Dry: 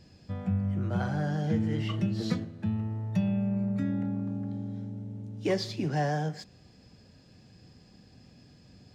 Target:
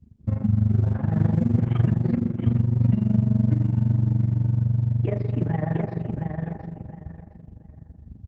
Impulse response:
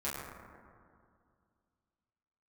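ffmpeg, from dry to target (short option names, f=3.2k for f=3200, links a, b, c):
-filter_complex "[0:a]asplit=2[a][b];[1:a]atrim=start_sample=2205,lowpass=6.4k[c];[b][c]afir=irnorm=-1:irlink=0,volume=-7dB[d];[a][d]amix=inputs=2:normalize=0,alimiter=limit=-22dB:level=0:latency=1:release=402,anlmdn=0.1,asubboost=boost=3:cutoff=89,lowpass=f=2.4k:w=0.5412,lowpass=f=2.4k:w=1.3066,acontrast=27,highpass=f=48:w=0.5412,highpass=f=48:w=1.3066,lowshelf=f=280:g=11,aecho=1:1:758|1516|2274:0.562|0.129|0.0297,tremolo=f=22:d=0.824,asetrate=47628,aresample=44100,volume=-2dB" -ar 48000 -c:a libopus -b:a 12k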